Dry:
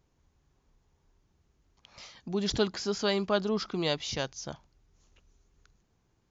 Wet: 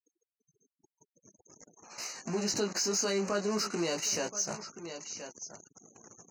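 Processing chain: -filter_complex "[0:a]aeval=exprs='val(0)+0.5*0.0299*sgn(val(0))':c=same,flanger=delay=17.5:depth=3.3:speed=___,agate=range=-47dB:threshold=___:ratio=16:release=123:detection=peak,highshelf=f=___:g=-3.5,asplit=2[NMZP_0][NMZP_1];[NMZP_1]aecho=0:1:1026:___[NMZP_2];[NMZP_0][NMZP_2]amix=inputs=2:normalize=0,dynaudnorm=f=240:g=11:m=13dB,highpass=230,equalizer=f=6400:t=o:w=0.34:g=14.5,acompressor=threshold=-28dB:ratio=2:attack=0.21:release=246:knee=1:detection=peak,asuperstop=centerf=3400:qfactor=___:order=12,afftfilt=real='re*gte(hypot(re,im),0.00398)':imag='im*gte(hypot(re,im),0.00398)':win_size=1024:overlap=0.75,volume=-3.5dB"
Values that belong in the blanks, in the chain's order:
0.49, -37dB, 3100, 0.1, 3.8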